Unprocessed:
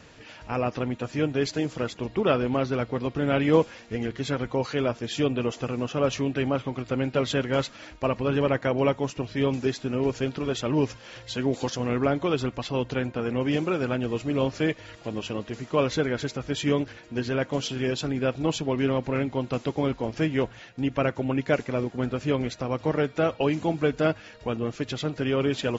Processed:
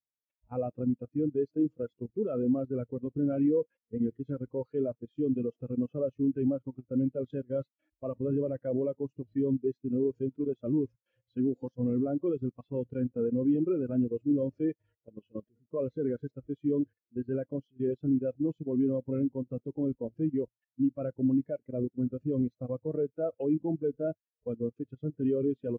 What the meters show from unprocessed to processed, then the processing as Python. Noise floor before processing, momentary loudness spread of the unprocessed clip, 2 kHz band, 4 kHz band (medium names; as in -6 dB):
-48 dBFS, 6 LU, under -25 dB, under -35 dB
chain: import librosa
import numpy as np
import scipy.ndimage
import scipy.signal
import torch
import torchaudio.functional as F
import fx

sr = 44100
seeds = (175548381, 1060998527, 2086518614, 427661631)

y = 10.0 ** (-13.0 / 20.0) * np.tanh(x / 10.0 ** (-13.0 / 20.0))
y = fx.level_steps(y, sr, step_db=15)
y = fx.mod_noise(y, sr, seeds[0], snr_db=12)
y = fx.spectral_expand(y, sr, expansion=2.5)